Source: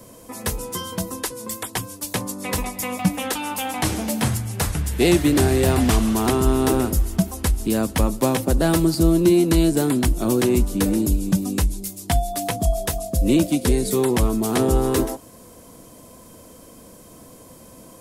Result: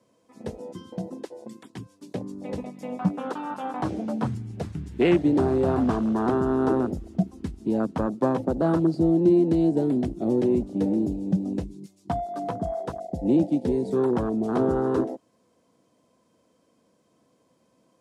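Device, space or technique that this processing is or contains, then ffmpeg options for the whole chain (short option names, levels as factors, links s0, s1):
over-cleaned archive recording: -af "highpass=140,lowpass=5500,afwtdn=0.0631,volume=0.75"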